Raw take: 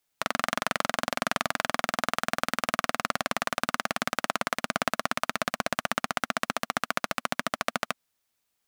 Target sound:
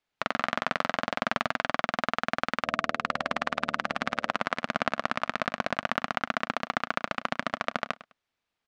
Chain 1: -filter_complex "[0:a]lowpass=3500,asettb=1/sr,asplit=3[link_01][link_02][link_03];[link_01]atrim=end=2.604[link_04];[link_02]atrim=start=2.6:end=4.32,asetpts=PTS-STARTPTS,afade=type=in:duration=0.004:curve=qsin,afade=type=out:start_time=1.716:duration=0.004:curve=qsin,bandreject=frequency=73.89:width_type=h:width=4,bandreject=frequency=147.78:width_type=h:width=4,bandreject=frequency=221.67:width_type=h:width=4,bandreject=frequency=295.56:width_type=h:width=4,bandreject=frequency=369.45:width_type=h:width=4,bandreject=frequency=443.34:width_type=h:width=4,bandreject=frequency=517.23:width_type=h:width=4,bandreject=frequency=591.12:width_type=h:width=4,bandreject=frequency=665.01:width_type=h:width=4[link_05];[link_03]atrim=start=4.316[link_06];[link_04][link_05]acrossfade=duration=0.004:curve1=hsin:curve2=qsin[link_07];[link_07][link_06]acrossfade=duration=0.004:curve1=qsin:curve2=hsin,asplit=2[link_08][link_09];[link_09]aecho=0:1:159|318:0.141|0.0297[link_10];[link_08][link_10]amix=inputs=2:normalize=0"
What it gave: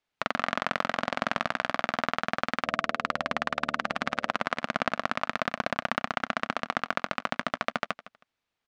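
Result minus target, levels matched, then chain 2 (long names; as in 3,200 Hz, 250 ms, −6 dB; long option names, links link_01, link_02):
echo 56 ms late
-filter_complex "[0:a]lowpass=3500,asettb=1/sr,asplit=3[link_01][link_02][link_03];[link_01]atrim=end=2.604[link_04];[link_02]atrim=start=2.6:end=4.32,asetpts=PTS-STARTPTS,afade=type=in:duration=0.004:curve=qsin,afade=type=out:start_time=1.716:duration=0.004:curve=qsin,bandreject=frequency=73.89:width_type=h:width=4,bandreject=frequency=147.78:width_type=h:width=4,bandreject=frequency=221.67:width_type=h:width=4,bandreject=frequency=295.56:width_type=h:width=4,bandreject=frequency=369.45:width_type=h:width=4,bandreject=frequency=443.34:width_type=h:width=4,bandreject=frequency=517.23:width_type=h:width=4,bandreject=frequency=591.12:width_type=h:width=4,bandreject=frequency=665.01:width_type=h:width=4[link_05];[link_03]atrim=start=4.316[link_06];[link_04][link_05]acrossfade=duration=0.004:curve1=hsin:curve2=qsin[link_07];[link_07][link_06]acrossfade=duration=0.004:curve1=qsin:curve2=hsin,asplit=2[link_08][link_09];[link_09]aecho=0:1:103|206:0.141|0.0297[link_10];[link_08][link_10]amix=inputs=2:normalize=0"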